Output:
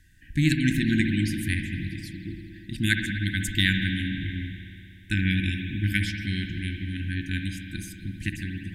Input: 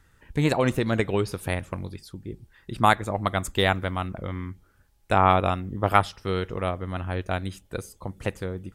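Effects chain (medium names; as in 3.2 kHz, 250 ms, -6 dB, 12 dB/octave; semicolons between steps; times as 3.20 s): brick-wall FIR band-stop 350–1500 Hz; hum notches 60/120/180/240/300/360 Hz; spring tank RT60 2.6 s, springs 58 ms, chirp 25 ms, DRR 3.5 dB; trim +2 dB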